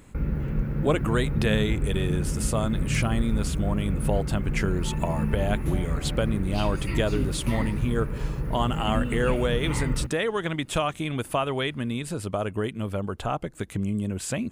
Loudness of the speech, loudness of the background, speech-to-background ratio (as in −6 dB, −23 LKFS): −28.5 LKFS, −29.5 LKFS, 1.0 dB